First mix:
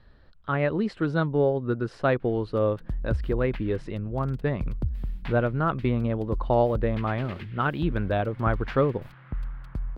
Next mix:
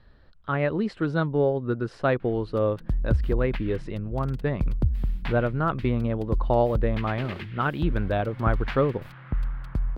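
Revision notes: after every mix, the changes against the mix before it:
background +5.0 dB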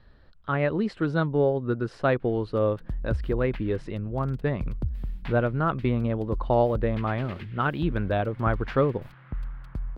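background -6.0 dB

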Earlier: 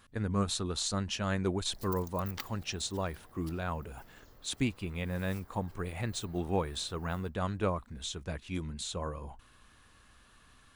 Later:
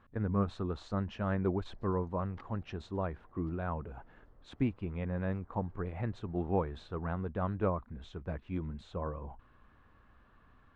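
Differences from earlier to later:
background -5.5 dB; master: add LPF 1400 Hz 12 dB/oct

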